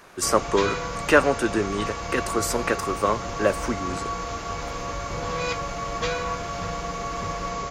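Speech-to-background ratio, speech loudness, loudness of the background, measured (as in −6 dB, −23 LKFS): 5.5 dB, −24.5 LKFS, −30.0 LKFS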